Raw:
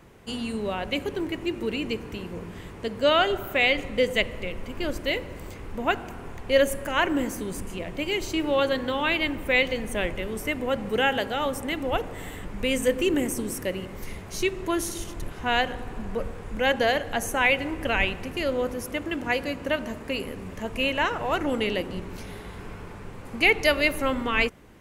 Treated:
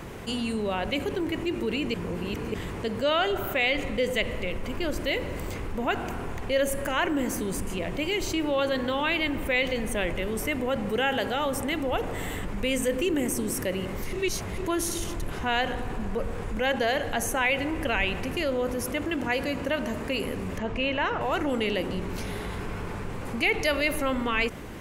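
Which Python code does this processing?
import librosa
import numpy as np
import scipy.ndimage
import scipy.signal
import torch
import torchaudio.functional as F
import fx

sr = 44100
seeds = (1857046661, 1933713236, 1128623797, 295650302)

y = fx.air_absorb(x, sr, metres=130.0, at=(20.58, 21.21))
y = fx.edit(y, sr, fx.reverse_span(start_s=1.94, length_s=0.6),
    fx.reverse_span(start_s=14.13, length_s=0.45), tone=tone)
y = fx.env_flatten(y, sr, amount_pct=50)
y = F.gain(torch.from_numpy(y), -6.0).numpy()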